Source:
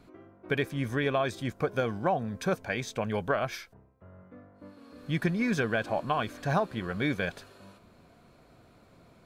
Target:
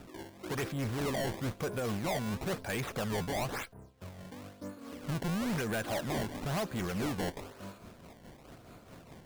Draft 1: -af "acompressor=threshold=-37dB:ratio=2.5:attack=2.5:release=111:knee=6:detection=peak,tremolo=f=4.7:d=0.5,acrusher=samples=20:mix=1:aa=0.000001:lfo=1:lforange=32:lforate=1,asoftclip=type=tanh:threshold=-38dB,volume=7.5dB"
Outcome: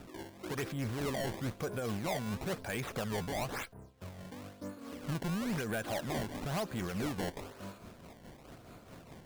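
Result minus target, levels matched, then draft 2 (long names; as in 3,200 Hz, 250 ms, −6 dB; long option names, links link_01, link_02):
downward compressor: peak gain reduction +6 dB
-af "acompressor=threshold=-27dB:ratio=2.5:attack=2.5:release=111:knee=6:detection=peak,tremolo=f=4.7:d=0.5,acrusher=samples=20:mix=1:aa=0.000001:lfo=1:lforange=32:lforate=1,asoftclip=type=tanh:threshold=-38dB,volume=7.5dB"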